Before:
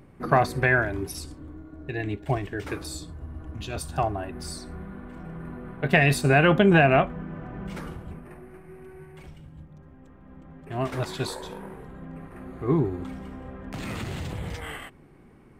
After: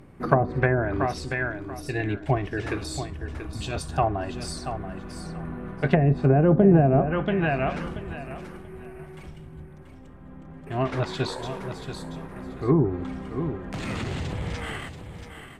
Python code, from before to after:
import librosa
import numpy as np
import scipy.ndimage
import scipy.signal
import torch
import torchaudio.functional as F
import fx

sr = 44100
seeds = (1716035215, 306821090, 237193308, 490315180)

y = fx.echo_feedback(x, sr, ms=683, feedback_pct=21, wet_db=-9.5)
y = fx.env_lowpass_down(y, sr, base_hz=540.0, full_db=-15.5)
y = y * librosa.db_to_amplitude(2.5)